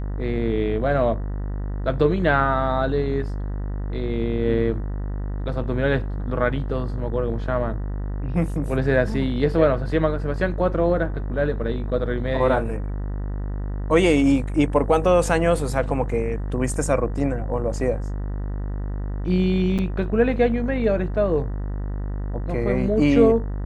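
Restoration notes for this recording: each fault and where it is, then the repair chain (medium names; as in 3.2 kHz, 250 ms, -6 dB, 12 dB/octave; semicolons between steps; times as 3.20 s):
buzz 50 Hz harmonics 39 -27 dBFS
19.78–19.79 s: dropout 7.6 ms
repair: de-hum 50 Hz, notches 39; interpolate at 19.78 s, 7.6 ms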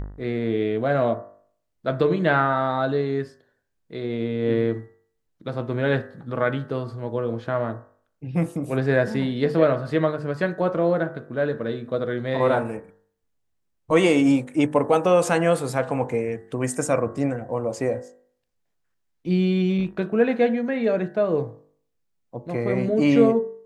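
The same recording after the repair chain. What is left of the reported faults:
nothing left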